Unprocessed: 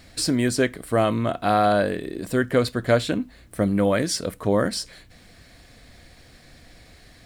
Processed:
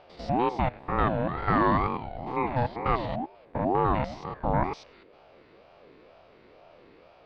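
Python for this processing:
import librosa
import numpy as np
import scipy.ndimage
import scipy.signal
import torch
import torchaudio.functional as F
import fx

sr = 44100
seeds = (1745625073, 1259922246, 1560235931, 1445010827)

y = fx.spec_steps(x, sr, hold_ms=100)
y = scipy.signal.sosfilt(scipy.signal.butter(4, 3800.0, 'lowpass', fs=sr, output='sos'), y)
y = fx.high_shelf(y, sr, hz=2900.0, db=-9.5)
y = fx.ring_lfo(y, sr, carrier_hz=510.0, swing_pct=30, hz=2.1)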